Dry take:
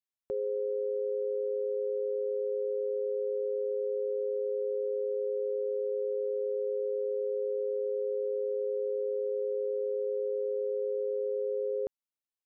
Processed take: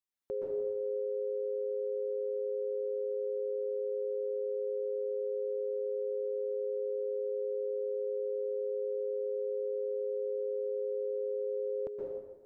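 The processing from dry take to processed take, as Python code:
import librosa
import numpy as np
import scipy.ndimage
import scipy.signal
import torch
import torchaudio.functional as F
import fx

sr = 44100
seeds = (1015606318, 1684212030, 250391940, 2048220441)

y = fx.rev_plate(x, sr, seeds[0], rt60_s=1.3, hf_ratio=0.7, predelay_ms=110, drr_db=-4.0)
y = y * librosa.db_to_amplitude(-3.0)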